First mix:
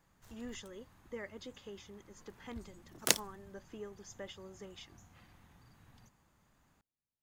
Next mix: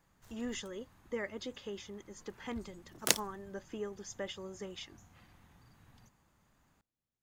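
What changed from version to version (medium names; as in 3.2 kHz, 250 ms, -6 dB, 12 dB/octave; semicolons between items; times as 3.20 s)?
speech +6.0 dB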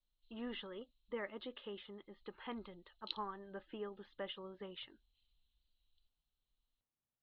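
background: add inverse Chebyshev band-stop 110–1600 Hz, stop band 50 dB; master: add rippled Chebyshev low-pass 4.2 kHz, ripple 6 dB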